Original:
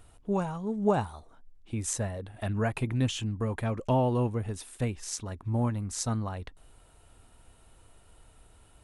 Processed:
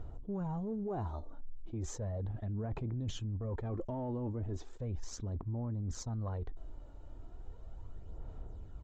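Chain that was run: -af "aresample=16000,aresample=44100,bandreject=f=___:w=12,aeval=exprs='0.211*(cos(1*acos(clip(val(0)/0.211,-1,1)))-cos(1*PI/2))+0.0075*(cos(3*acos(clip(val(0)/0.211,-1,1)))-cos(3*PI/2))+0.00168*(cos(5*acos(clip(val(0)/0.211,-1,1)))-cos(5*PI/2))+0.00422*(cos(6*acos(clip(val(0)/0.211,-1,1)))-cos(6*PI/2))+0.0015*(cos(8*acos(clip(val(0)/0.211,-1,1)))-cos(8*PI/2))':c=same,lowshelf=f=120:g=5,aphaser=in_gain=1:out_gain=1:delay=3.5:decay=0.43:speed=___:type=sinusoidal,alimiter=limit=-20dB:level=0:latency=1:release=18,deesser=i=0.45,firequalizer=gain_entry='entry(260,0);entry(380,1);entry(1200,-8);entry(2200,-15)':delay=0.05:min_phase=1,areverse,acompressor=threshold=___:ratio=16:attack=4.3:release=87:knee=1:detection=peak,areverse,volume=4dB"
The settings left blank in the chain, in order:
2700, 0.36, -38dB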